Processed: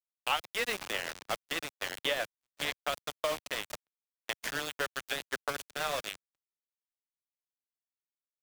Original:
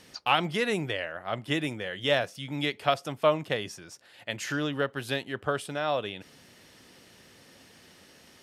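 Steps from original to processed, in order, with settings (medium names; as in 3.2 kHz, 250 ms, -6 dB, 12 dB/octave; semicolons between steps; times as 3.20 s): in parallel at -0.5 dB: peak limiter -19 dBFS, peak gain reduction 10.5 dB; on the sum: high-pass 590 Hz 12 dB/octave; on a send: echo that smears into a reverb 523 ms, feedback 43%, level -10 dB; on the sum: rotary cabinet horn 8 Hz; level-controlled noise filter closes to 2.3 kHz, open at -25 dBFS; small samples zeroed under -27.5 dBFS; gate -43 dBFS, range -40 dB; three bands compressed up and down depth 70%; trim -3.5 dB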